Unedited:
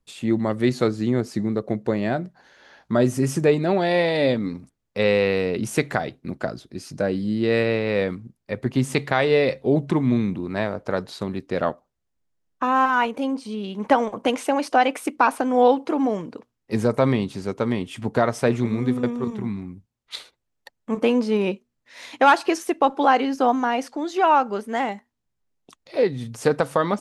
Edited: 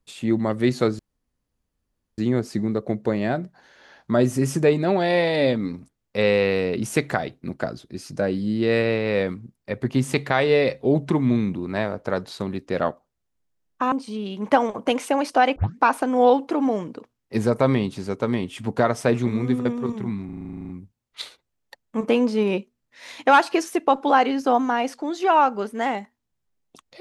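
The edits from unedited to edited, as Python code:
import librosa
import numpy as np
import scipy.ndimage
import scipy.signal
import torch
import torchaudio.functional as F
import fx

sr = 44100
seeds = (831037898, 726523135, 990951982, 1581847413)

y = fx.edit(x, sr, fx.insert_room_tone(at_s=0.99, length_s=1.19),
    fx.cut(start_s=12.73, length_s=0.57),
    fx.tape_start(start_s=14.94, length_s=0.25),
    fx.stutter(start_s=19.63, slice_s=0.04, count=12), tone=tone)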